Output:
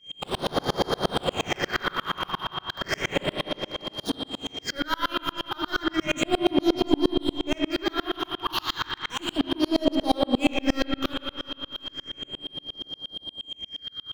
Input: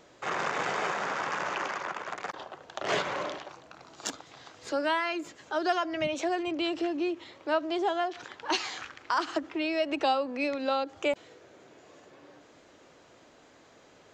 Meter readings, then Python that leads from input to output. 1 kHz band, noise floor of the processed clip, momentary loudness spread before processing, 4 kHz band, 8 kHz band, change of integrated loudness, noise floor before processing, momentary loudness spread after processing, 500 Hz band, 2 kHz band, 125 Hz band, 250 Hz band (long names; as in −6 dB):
+0.5 dB, −54 dBFS, 11 LU, +10.0 dB, +2.0 dB, +3.5 dB, −58 dBFS, 11 LU, +2.5 dB, +2.0 dB, +14.0 dB, +8.0 dB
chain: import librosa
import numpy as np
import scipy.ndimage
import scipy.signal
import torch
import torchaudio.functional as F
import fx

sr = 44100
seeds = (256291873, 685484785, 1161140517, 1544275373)

p1 = fx.low_shelf(x, sr, hz=400.0, db=5.0)
p2 = fx.leveller(p1, sr, passes=5)
p3 = fx.phaser_stages(p2, sr, stages=6, low_hz=510.0, high_hz=2400.0, hz=0.33, feedback_pct=50)
p4 = p3 + fx.echo_alternate(p3, sr, ms=350, hz=1600.0, feedback_pct=52, wet_db=-11.5, dry=0)
p5 = p4 + 10.0 ** (-26.0 / 20.0) * np.sin(2.0 * np.pi * 3200.0 * np.arange(len(p4)) / sr)
p6 = fx.rev_spring(p5, sr, rt60_s=2.4, pass_ms=(41, 52), chirp_ms=20, drr_db=1.0)
y = fx.tremolo_decay(p6, sr, direction='swelling', hz=8.5, depth_db=34)